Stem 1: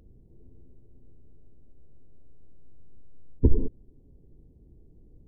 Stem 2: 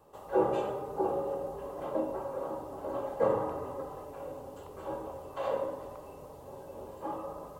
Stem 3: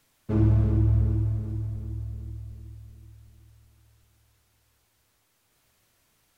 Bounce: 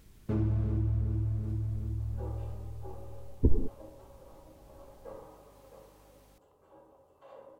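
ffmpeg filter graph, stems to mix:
ffmpeg -i stem1.wav -i stem2.wav -i stem3.wav -filter_complex "[0:a]volume=-4.5dB[link_01];[1:a]adelay=1850,volume=-19.5dB,asplit=2[link_02][link_03];[link_03]volume=-9dB[link_04];[2:a]acompressor=threshold=-31dB:ratio=2.5,aeval=exprs='val(0)+0.000794*(sin(2*PI*50*n/s)+sin(2*PI*2*50*n/s)/2+sin(2*PI*3*50*n/s)/3+sin(2*PI*4*50*n/s)/4+sin(2*PI*5*50*n/s)/5)':channel_layout=same,volume=0.5dB[link_05];[link_04]aecho=0:1:663:1[link_06];[link_01][link_02][link_05][link_06]amix=inputs=4:normalize=0" out.wav

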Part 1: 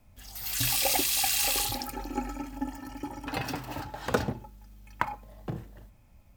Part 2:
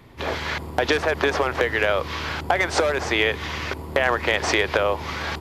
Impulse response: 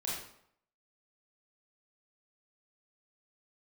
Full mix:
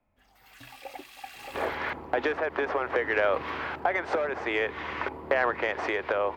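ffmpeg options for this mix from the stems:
-filter_complex "[0:a]volume=-6.5dB[link_01];[1:a]adelay=1350,volume=-2dB[link_02];[link_01][link_02]amix=inputs=2:normalize=0,acrossover=split=250 2600:gain=0.224 1 0.0891[link_03][link_04][link_05];[link_03][link_04][link_05]amix=inputs=3:normalize=0,asoftclip=type=tanh:threshold=-8.5dB,tremolo=f=0.59:d=0.38"

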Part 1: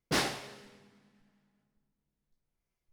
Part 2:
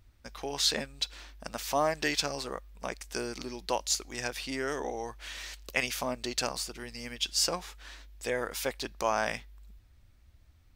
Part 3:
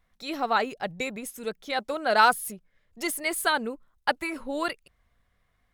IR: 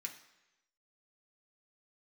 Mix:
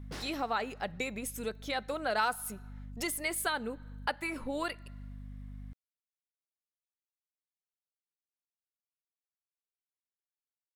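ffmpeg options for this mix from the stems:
-filter_complex "[0:a]acompressor=threshold=-35dB:ratio=2.5,volume=-7dB[link_01];[2:a]aeval=exprs='val(0)+0.00562*(sin(2*PI*50*n/s)+sin(2*PI*2*50*n/s)/2+sin(2*PI*3*50*n/s)/3+sin(2*PI*4*50*n/s)/4+sin(2*PI*5*50*n/s)/5)':channel_layout=same,volume=2.5dB,asplit=2[link_02][link_03];[link_03]volume=-12.5dB[link_04];[3:a]atrim=start_sample=2205[link_05];[link_04][link_05]afir=irnorm=-1:irlink=0[link_06];[link_01][link_02][link_06]amix=inputs=3:normalize=0,acompressor=threshold=-38dB:ratio=2"

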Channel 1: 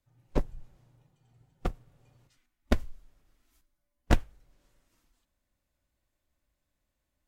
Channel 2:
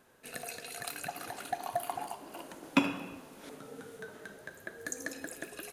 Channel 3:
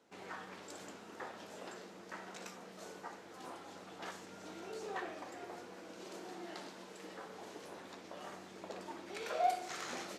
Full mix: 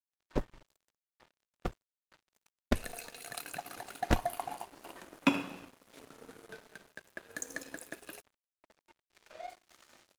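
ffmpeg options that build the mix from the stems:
ffmpeg -i stem1.wav -i stem2.wav -i stem3.wav -filter_complex "[0:a]lowshelf=frequency=70:gain=-7,volume=-2dB[link_01];[1:a]adelay=2500,volume=-0.5dB[link_02];[2:a]asubboost=boost=11:cutoff=53,aecho=1:1:3.3:0.47,volume=-8.5dB[link_03];[link_01][link_02][link_03]amix=inputs=3:normalize=0,aeval=exprs='sgn(val(0))*max(abs(val(0))-0.00335,0)':channel_layout=same" out.wav

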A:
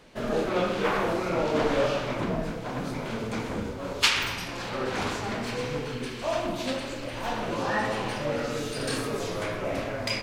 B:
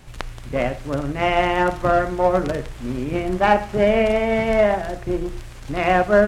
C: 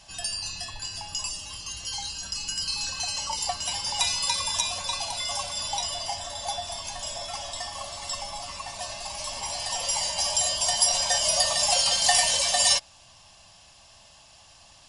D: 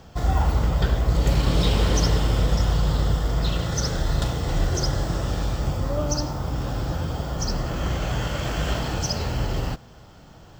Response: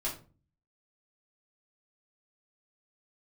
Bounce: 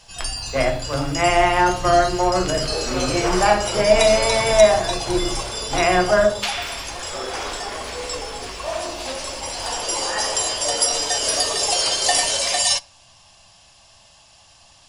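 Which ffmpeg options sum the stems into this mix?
-filter_complex "[0:a]adelay=2400,volume=1dB[link_01];[1:a]agate=range=-33dB:threshold=-26dB:ratio=3:detection=peak,volume=1.5dB,asplit=2[link_02][link_03];[link_03]volume=-7.5dB[link_04];[2:a]volume=1.5dB,asplit=2[link_05][link_06];[link_06]volume=-20dB[link_07];[3:a]aecho=1:1:4.2:0.93,acrossover=split=120[link_08][link_09];[link_09]acompressor=threshold=-31dB:ratio=2[link_10];[link_08][link_10]amix=inputs=2:normalize=0,volume=-14dB,asplit=2[link_11][link_12];[link_12]volume=-8dB[link_13];[link_01][link_02][link_11]amix=inputs=3:normalize=0,highpass=frequency=340:width=0.5412,highpass=frequency=340:width=1.3066,alimiter=limit=-11dB:level=0:latency=1:release=282,volume=0dB[link_14];[4:a]atrim=start_sample=2205[link_15];[link_04][link_07][link_13]amix=inputs=3:normalize=0[link_16];[link_16][link_15]afir=irnorm=-1:irlink=0[link_17];[link_05][link_14][link_17]amix=inputs=3:normalize=0"

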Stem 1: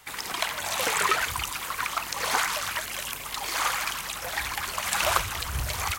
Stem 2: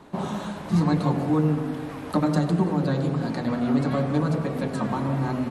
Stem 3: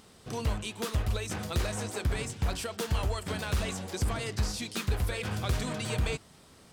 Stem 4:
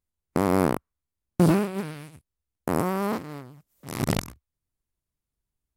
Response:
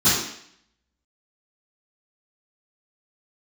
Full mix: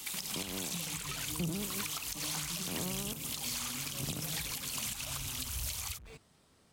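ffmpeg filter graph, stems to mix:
-filter_complex "[0:a]highshelf=frequency=11000:gain=-3.5,aexciter=amount=2.6:drive=9.3:freq=2500,volume=-4dB[link_01];[1:a]tiltshelf=frequency=1500:gain=7,volume=-19dB[link_02];[2:a]volume=35.5dB,asoftclip=hard,volume=-35.5dB,volume=-10.5dB[link_03];[3:a]highpass=140,tiltshelf=frequency=970:gain=5,tremolo=f=0.7:d=0.59,volume=-6dB[link_04];[link_01][link_02][link_03][link_04]amix=inputs=4:normalize=0,acrossover=split=140[link_05][link_06];[link_06]acompressor=threshold=-30dB:ratio=10[link_07];[link_05][link_07]amix=inputs=2:normalize=0,alimiter=level_in=1dB:limit=-24dB:level=0:latency=1:release=274,volume=-1dB"

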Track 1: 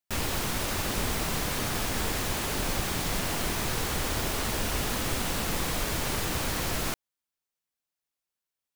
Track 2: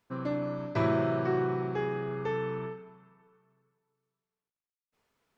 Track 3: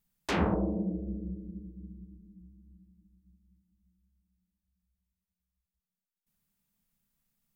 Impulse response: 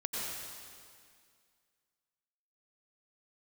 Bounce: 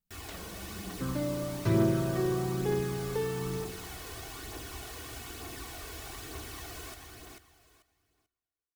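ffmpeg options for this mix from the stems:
-filter_complex "[0:a]highpass=53,aecho=1:1:2.7:0.77,volume=-17.5dB,asplit=3[link_01][link_02][link_03];[link_02]volume=-13dB[link_04];[link_03]volume=-4dB[link_05];[1:a]adelay=900,volume=1.5dB[link_06];[2:a]acompressor=threshold=-32dB:ratio=6,volume=-11dB[link_07];[3:a]atrim=start_sample=2205[link_08];[link_04][link_08]afir=irnorm=-1:irlink=0[link_09];[link_05]aecho=0:1:440|880|1320:1|0.21|0.0441[link_10];[link_01][link_06][link_07][link_09][link_10]amix=inputs=5:normalize=0,acrossover=split=470|3000[link_11][link_12][link_13];[link_12]acompressor=threshold=-46dB:ratio=2[link_14];[link_11][link_14][link_13]amix=inputs=3:normalize=0,aphaser=in_gain=1:out_gain=1:delay=2.1:decay=0.32:speed=1.1:type=triangular"

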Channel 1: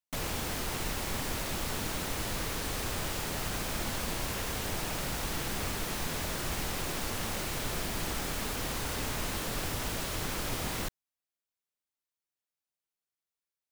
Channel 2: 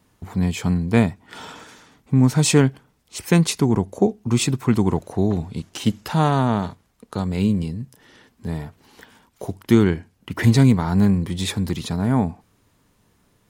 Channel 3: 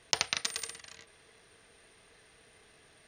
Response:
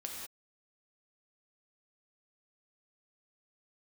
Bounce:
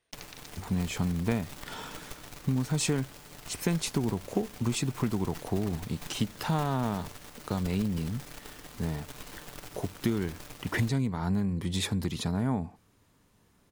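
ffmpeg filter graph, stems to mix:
-filter_complex "[0:a]aecho=1:1:6.8:0.44,aeval=exprs='0.112*(cos(1*acos(clip(val(0)/0.112,-1,1)))-cos(1*PI/2))+0.0282*(cos(2*acos(clip(val(0)/0.112,-1,1)))-cos(2*PI/2))+0.0282*(cos(3*acos(clip(val(0)/0.112,-1,1)))-cos(3*PI/2))':channel_layout=same,volume=-5.5dB[link_01];[1:a]acompressor=threshold=-21dB:ratio=6,adelay=350,volume=-4dB[link_02];[2:a]volume=-18dB[link_03];[link_01][link_02][link_03]amix=inputs=3:normalize=0"

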